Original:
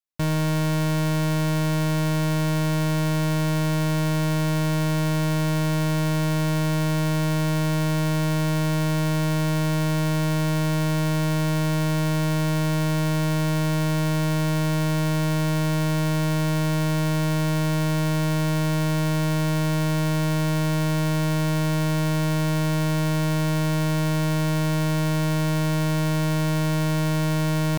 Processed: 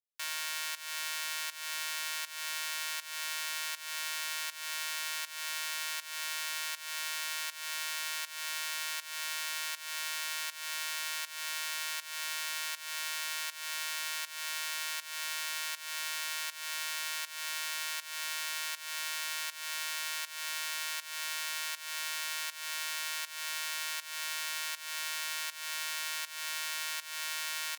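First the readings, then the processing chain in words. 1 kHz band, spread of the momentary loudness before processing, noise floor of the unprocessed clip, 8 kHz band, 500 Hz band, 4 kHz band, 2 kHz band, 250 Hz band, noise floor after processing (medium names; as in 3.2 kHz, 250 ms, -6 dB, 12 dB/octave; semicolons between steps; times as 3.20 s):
-12.0 dB, 0 LU, -22 dBFS, -1.0 dB, -29.5 dB, -1.5 dB, -4.5 dB, under -40 dB, -48 dBFS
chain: Bessel high-pass 2 kHz, order 4; volume shaper 80 bpm, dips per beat 1, -16 dB, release 314 ms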